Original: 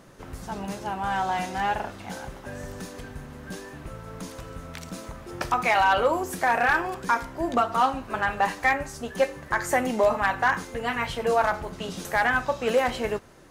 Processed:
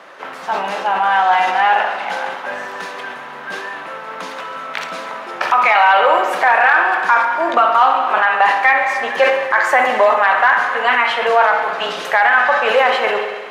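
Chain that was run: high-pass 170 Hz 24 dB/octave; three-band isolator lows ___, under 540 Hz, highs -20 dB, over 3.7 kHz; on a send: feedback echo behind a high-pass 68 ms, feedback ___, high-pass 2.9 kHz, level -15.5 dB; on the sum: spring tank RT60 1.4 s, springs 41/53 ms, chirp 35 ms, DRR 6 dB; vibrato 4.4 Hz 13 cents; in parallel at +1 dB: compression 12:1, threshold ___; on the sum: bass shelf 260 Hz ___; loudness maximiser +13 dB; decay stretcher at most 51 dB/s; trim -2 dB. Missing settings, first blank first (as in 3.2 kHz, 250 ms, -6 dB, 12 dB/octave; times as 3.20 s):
-16 dB, 82%, -32 dBFS, -9.5 dB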